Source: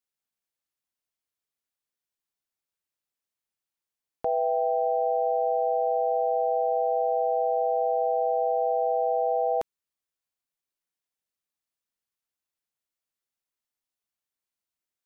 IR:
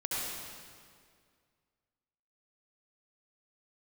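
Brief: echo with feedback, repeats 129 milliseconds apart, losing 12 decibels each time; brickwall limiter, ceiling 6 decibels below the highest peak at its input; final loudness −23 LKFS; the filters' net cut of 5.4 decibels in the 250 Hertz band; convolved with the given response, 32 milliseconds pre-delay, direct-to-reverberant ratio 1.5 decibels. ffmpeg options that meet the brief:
-filter_complex "[0:a]equalizer=frequency=250:width_type=o:gain=-8.5,alimiter=limit=-24dB:level=0:latency=1,aecho=1:1:129|258|387:0.251|0.0628|0.0157,asplit=2[link_01][link_02];[1:a]atrim=start_sample=2205,adelay=32[link_03];[link_02][link_03]afir=irnorm=-1:irlink=0,volume=-7.5dB[link_04];[link_01][link_04]amix=inputs=2:normalize=0,volume=1.5dB"

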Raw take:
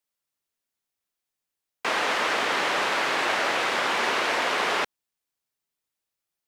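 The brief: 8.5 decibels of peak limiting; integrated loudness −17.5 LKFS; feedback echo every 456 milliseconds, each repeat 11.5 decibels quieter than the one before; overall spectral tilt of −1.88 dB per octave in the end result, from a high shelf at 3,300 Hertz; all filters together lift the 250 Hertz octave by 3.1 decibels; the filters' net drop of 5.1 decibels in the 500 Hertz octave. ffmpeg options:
ffmpeg -i in.wav -af "equalizer=frequency=250:width_type=o:gain=7.5,equalizer=frequency=500:width_type=o:gain=-8.5,highshelf=frequency=3300:gain=-3.5,alimiter=limit=-23dB:level=0:latency=1,aecho=1:1:456|912|1368:0.266|0.0718|0.0194,volume=13dB" out.wav

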